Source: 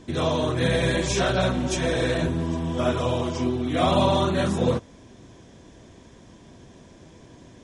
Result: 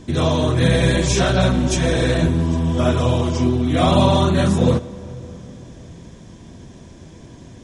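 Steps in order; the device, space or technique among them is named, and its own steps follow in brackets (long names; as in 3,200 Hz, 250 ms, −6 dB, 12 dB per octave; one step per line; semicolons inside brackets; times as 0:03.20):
bass and treble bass +6 dB, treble +3 dB
compressed reverb return (on a send at −12 dB: convolution reverb RT60 2.7 s, pre-delay 77 ms + downward compressor, threshold −21 dBFS, peak gain reduction 7.5 dB)
on the sum: level +3.5 dB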